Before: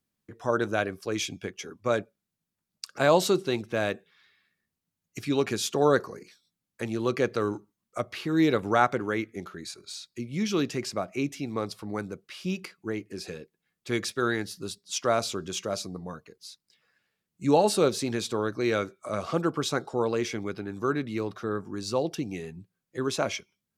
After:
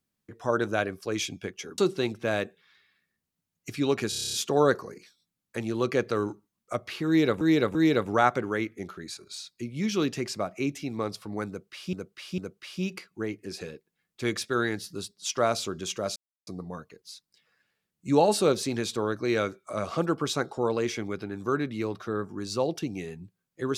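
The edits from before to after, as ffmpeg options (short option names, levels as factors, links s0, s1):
-filter_complex "[0:a]asplit=15[s0][s1][s2][s3][s4][s5][s6][s7][s8][s9][s10][s11][s12][s13][s14];[s0]atrim=end=1.782[s15];[s1]atrim=start=3.268:end=5.612[s16];[s2]atrim=start=5.578:end=5.612[s17];[s3]atrim=start=5.578:end=5.612[s18];[s4]atrim=start=5.578:end=5.612[s19];[s5]atrim=start=5.578:end=5.612[s20];[s6]atrim=start=5.578:end=5.612[s21];[s7]atrim=start=5.578:end=5.612[s22];[s8]atrim=start=5.578:end=5.612[s23];[s9]atrim=start=5.578:end=8.662[s24];[s10]atrim=start=8.318:end=8.662[s25];[s11]atrim=start=8.318:end=12.502[s26];[s12]atrim=start=12.048:end=12.502[s27];[s13]atrim=start=12.048:end=15.83,asetpts=PTS-STARTPTS,afade=t=out:st=3.778:d=0.004:c=hsin,apad=pad_dur=0.31[s28];[s14]atrim=start=15.83,asetpts=PTS-STARTPTS,afade=t=in:d=0.004:c=hsin[s29];[s15][s16]acrossfade=d=0.004:c1=hsin:c2=hsin[s30];[s30][s17]acrossfade=d=0.004:c1=hsin:c2=hsin[s31];[s31][s18]acrossfade=d=0.004:c1=hsin:c2=hsin[s32];[s32][s19]acrossfade=d=0.004:c1=hsin:c2=hsin[s33];[s33][s20]acrossfade=d=0.004:c1=hsin:c2=hsin[s34];[s34][s21]acrossfade=d=0.004:c1=hsin:c2=hsin[s35];[s35][s22]acrossfade=d=0.004:c1=hsin:c2=hsin[s36];[s36][s23]acrossfade=d=0.004:c1=hsin:c2=hsin[s37];[s37][s24]acrossfade=d=0.004:c1=hsin:c2=hsin[s38];[s38][s25]acrossfade=d=0.004:c1=hsin:c2=hsin[s39];[s39][s26]acrossfade=d=0.004:c1=hsin:c2=hsin[s40];[s40][s27]acrossfade=d=0.004:c1=hsin:c2=hsin[s41];[s28][s29]concat=n=2:v=0:a=1[s42];[s41][s42]acrossfade=d=0.004:c1=hsin:c2=hsin"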